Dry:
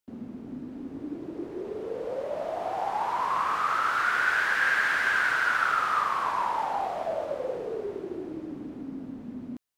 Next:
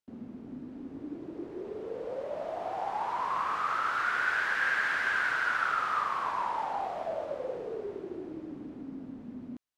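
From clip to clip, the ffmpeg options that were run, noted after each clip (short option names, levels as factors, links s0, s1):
-af "highshelf=f=10000:g=-10.5,volume=0.631"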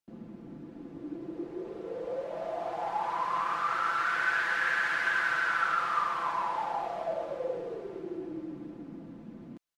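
-af "aecho=1:1:5.9:0.68,volume=0.891"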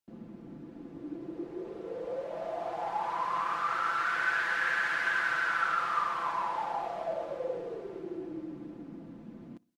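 -filter_complex "[0:a]asplit=2[s0][s1];[s1]adelay=62,lowpass=f=2000:p=1,volume=0.0631,asplit=2[s2][s3];[s3]adelay=62,lowpass=f=2000:p=1,volume=0.49,asplit=2[s4][s5];[s5]adelay=62,lowpass=f=2000:p=1,volume=0.49[s6];[s0][s2][s4][s6]amix=inputs=4:normalize=0,volume=0.891"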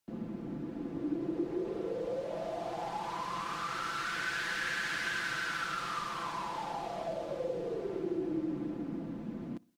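-filter_complex "[0:a]acrossover=split=350|3000[s0][s1][s2];[s1]acompressor=threshold=0.00562:ratio=5[s3];[s0][s3][s2]amix=inputs=3:normalize=0,volume=2.11"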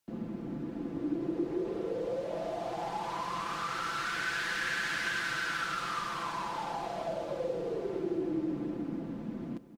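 -af "aecho=1:1:453|906|1359|1812:0.15|0.0748|0.0374|0.0187,volume=1.19"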